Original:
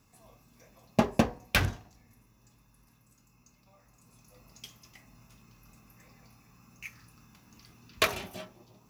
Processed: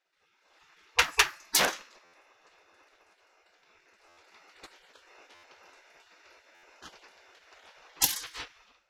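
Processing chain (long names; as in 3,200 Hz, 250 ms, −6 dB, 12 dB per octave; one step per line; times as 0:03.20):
gate on every frequency bin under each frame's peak −20 dB weak
low-pass that shuts in the quiet parts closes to 2,800 Hz, open at −37 dBFS
automatic gain control gain up to 15 dB
buffer that repeats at 0:02.04/0:04.08/0:05.34/0:06.54, samples 512, times 7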